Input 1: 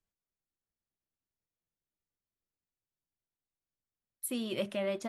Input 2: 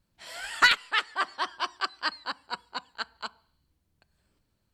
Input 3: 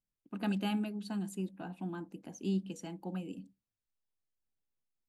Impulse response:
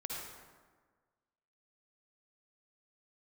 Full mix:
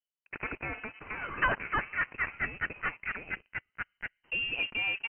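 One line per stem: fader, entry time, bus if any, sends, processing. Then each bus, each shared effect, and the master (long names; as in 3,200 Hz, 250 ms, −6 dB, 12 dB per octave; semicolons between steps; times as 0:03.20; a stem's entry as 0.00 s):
−10.0 dB, 0.00 s, no send, low-shelf EQ 190 Hz +4 dB; pitch vibrato 0.67 Hz 71 cents
−11.5 dB, 0.80 s, no send, no processing
−3.0 dB, 0.00 s, no send, noise gate with hold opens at −59 dBFS; Butterworth high-pass 440 Hz 48 dB per octave; every bin compressed towards the loudest bin 2 to 1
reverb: not used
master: leveller curve on the samples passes 3; voice inversion scrambler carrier 3,000 Hz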